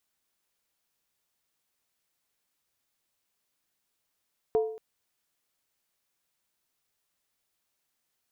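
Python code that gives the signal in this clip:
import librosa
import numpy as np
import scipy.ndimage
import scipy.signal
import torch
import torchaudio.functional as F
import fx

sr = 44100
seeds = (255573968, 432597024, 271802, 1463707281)

y = fx.strike_skin(sr, length_s=0.23, level_db=-19, hz=440.0, decay_s=0.59, tilt_db=10.5, modes=5)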